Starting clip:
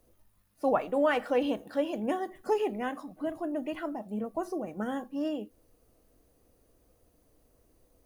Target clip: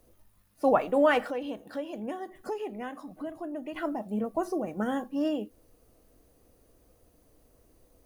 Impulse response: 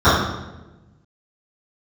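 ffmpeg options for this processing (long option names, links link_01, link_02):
-filter_complex "[0:a]asettb=1/sr,asplit=3[link_01][link_02][link_03];[link_01]atrim=end=1.274[link_04];[link_02]atrim=start=1.27:end=3.76,asetpts=PTS-STARTPTS,afade=type=in:duration=0.004:curve=qsin,afade=type=out:start_time=2.486:duration=0.004:curve=qsin,acompressor=threshold=-43dB:ratio=2[link_05];[link_03]atrim=start=3.756[link_06];[link_04][link_05]acrossfade=duration=0.004:curve1=hsin:curve2=qsin[link_07];[link_07][link_06]acrossfade=duration=0.004:curve1=qsin:curve2=hsin,volume=3.5dB"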